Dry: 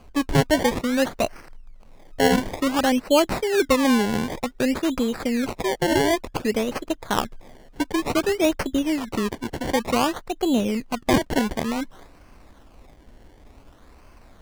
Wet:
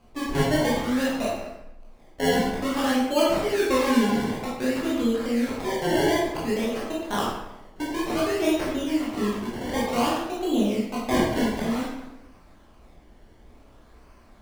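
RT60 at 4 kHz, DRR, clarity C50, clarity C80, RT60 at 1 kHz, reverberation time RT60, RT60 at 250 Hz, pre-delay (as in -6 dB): 0.70 s, -6.5 dB, 0.0 dB, 3.5 dB, 0.90 s, 0.90 s, 1.0 s, 15 ms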